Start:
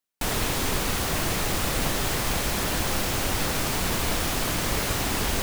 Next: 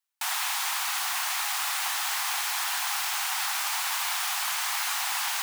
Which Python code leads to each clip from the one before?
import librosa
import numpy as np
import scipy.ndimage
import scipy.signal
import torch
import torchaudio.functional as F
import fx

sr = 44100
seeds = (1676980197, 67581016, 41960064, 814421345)

y = scipy.signal.sosfilt(scipy.signal.butter(12, 760.0, 'highpass', fs=sr, output='sos'), x)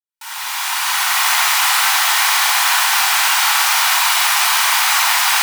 y = fx.fade_in_head(x, sr, length_s=1.25)
y = fx.room_shoebox(y, sr, seeds[0], volume_m3=2600.0, walls='mixed', distance_m=4.7)
y = F.gain(torch.from_numpy(y), 8.5).numpy()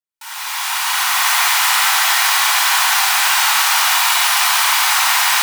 y = x + 10.0 ** (-5.0 / 20.0) * np.pad(x, (int(143 * sr / 1000.0), 0))[:len(x)]
y = F.gain(torch.from_numpy(y), -1.0).numpy()